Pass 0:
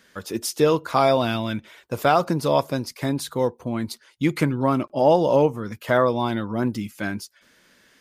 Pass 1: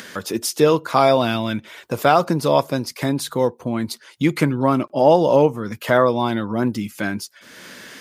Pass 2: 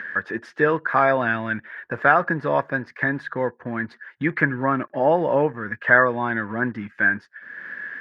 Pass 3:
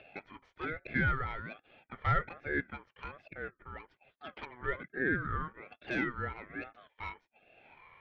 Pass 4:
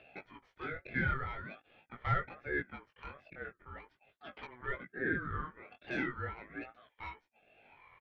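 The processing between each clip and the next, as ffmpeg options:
-filter_complex "[0:a]highpass=100,asplit=2[s0][s1];[s1]acompressor=mode=upward:threshold=0.0794:ratio=2.5,volume=1.33[s2];[s0][s2]amix=inputs=2:normalize=0,volume=0.631"
-filter_complex "[0:a]asplit=2[s0][s1];[s1]acrusher=bits=4:mix=0:aa=0.5,volume=0.299[s2];[s0][s2]amix=inputs=2:normalize=0,lowpass=f=1700:t=q:w=13,volume=0.376"
-filter_complex "[0:a]aeval=exprs='(tanh(3.98*val(0)+0.4)-tanh(0.4))/3.98':c=same,asplit=3[s0][s1][s2];[s0]bandpass=f=730:t=q:w=8,volume=1[s3];[s1]bandpass=f=1090:t=q:w=8,volume=0.501[s4];[s2]bandpass=f=2440:t=q:w=8,volume=0.355[s5];[s3][s4][s5]amix=inputs=3:normalize=0,aeval=exprs='val(0)*sin(2*PI*820*n/s+820*0.25/1.2*sin(2*PI*1.2*n/s))':c=same,volume=1.12"
-af "aresample=32000,aresample=44100,flanger=delay=15.5:depth=7.7:speed=0.43"

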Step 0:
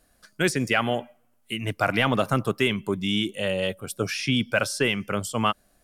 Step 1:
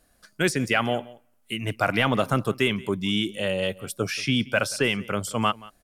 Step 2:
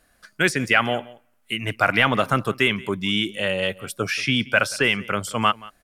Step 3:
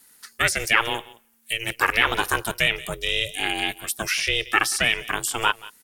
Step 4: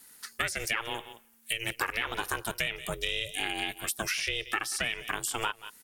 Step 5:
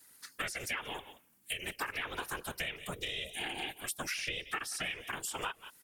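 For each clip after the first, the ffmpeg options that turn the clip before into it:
-af "aecho=1:1:179:0.0841"
-af "equalizer=f=1800:w=0.74:g=7"
-filter_complex "[0:a]aeval=exprs='val(0)*sin(2*PI*230*n/s)':c=same,acrossover=split=2600[s0][s1];[s1]acompressor=threshold=0.0178:ratio=4:attack=1:release=60[s2];[s0][s2]amix=inputs=2:normalize=0,crystalizer=i=9:c=0,volume=0.596"
-af "acompressor=threshold=0.0398:ratio=6"
-af "afftfilt=real='hypot(re,im)*cos(2*PI*random(0))':imag='hypot(re,im)*sin(2*PI*random(1))':win_size=512:overlap=0.75"

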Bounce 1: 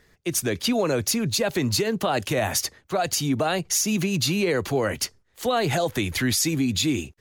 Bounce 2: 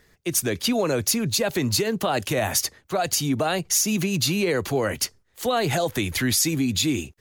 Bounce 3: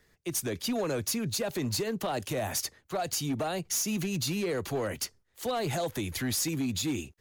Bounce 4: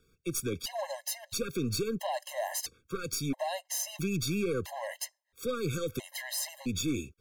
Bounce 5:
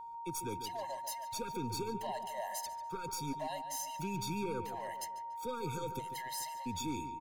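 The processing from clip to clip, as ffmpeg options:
-af "highshelf=f=8600:g=5"
-filter_complex "[0:a]acrossover=split=380|1100|4000[s0][s1][s2][s3];[s2]alimiter=level_in=1.41:limit=0.0631:level=0:latency=1:release=22,volume=0.708[s4];[s0][s1][s4][s3]amix=inputs=4:normalize=0,asoftclip=type=hard:threshold=0.119,volume=0.447"
-af "aeval=exprs='0.0562*(cos(1*acos(clip(val(0)/0.0562,-1,1)))-cos(1*PI/2))+0.00891*(cos(2*acos(clip(val(0)/0.0562,-1,1)))-cos(2*PI/2))':c=same,afftfilt=real='re*gt(sin(2*PI*0.75*pts/sr)*(1-2*mod(floor(b*sr/1024/540),2)),0)':imag='im*gt(sin(2*PI*0.75*pts/sr)*(1-2*mod(floor(b*sr/1024/540),2)),0)':win_size=1024:overlap=0.75"
-filter_complex "[0:a]aeval=exprs='val(0)+0.0158*sin(2*PI*930*n/s)':c=same,asplit=2[s0][s1];[s1]adelay=144,lowpass=f=3400:p=1,volume=0.316,asplit=2[s2][s3];[s3]adelay=144,lowpass=f=3400:p=1,volume=0.49,asplit=2[s4][s5];[s5]adelay=144,lowpass=f=3400:p=1,volume=0.49,asplit=2[s6][s7];[s7]adelay=144,lowpass=f=3400:p=1,volume=0.49,asplit=2[s8][s9];[s9]adelay=144,lowpass=f=3400:p=1,volume=0.49[s10];[s2][s4][s6][s8][s10]amix=inputs=5:normalize=0[s11];[s0][s11]amix=inputs=2:normalize=0,volume=0.398"

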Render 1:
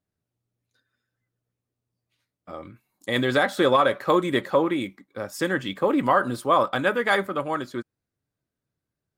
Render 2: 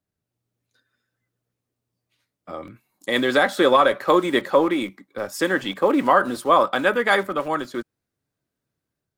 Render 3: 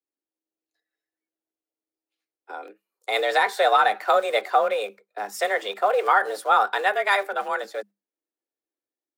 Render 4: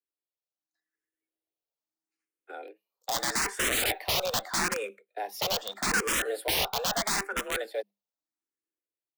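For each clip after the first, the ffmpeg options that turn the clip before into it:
-filter_complex "[0:a]acrossover=split=170[s0][s1];[s0]aeval=exprs='(mod(119*val(0)+1,2)-1)/119':c=same[s2];[s1]dynaudnorm=f=230:g=3:m=1.58[s3];[s2][s3]amix=inputs=2:normalize=0"
-af "agate=range=0.251:threshold=0.0112:ratio=16:detection=peak,afreqshift=200,volume=0.75"
-filter_complex "[0:a]aeval=exprs='(mod(7.94*val(0)+1,2)-1)/7.94':c=same,dynaudnorm=f=250:g=7:m=1.88,asplit=2[s0][s1];[s1]afreqshift=0.79[s2];[s0][s2]amix=inputs=2:normalize=1,volume=0.473"

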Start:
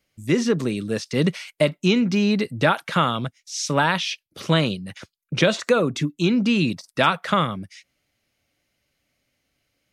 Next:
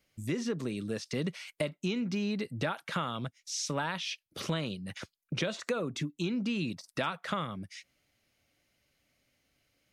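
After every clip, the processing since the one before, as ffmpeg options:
-af "acompressor=threshold=0.02:ratio=2.5,volume=0.841"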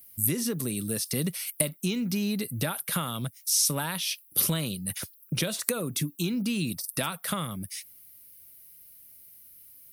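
-af "bass=f=250:g=6,treble=f=4000:g=13,aexciter=amount=13.8:drive=4.1:freq=9700"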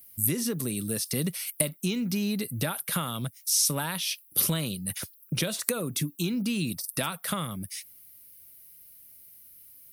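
-af anull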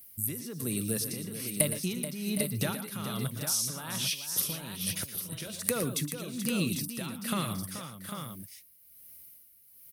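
-filter_complex "[0:a]tremolo=f=1.2:d=0.79,asplit=2[s0][s1];[s1]aecho=0:1:115|126|431|763|798:0.266|0.126|0.299|0.211|0.422[s2];[s0][s2]amix=inputs=2:normalize=0"

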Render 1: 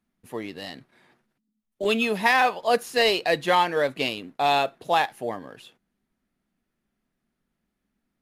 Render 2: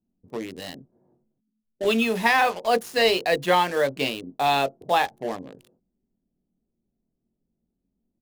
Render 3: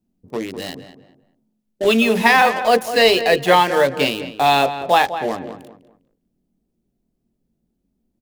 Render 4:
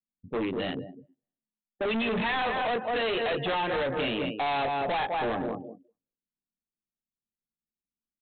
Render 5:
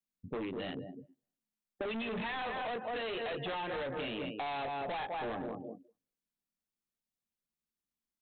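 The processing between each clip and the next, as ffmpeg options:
-filter_complex "[0:a]acrossover=split=650[s0][s1];[s0]asplit=2[s2][s3];[s3]adelay=22,volume=0.668[s4];[s2][s4]amix=inputs=2:normalize=0[s5];[s1]acrusher=bits=5:mix=0:aa=0.5[s6];[s5][s6]amix=inputs=2:normalize=0"
-filter_complex "[0:a]asplit=2[s0][s1];[s1]adelay=201,lowpass=f=2500:p=1,volume=0.282,asplit=2[s2][s3];[s3]adelay=201,lowpass=f=2500:p=1,volume=0.29,asplit=2[s4][s5];[s5]adelay=201,lowpass=f=2500:p=1,volume=0.29[s6];[s0][s2][s4][s6]amix=inputs=4:normalize=0,volume=2.11"
-af "afftdn=nr=33:nf=-36,acompressor=threshold=0.112:ratio=5,aresample=8000,asoftclip=type=hard:threshold=0.0398,aresample=44100,volume=1.19"
-af "acompressor=threshold=0.0141:ratio=6"

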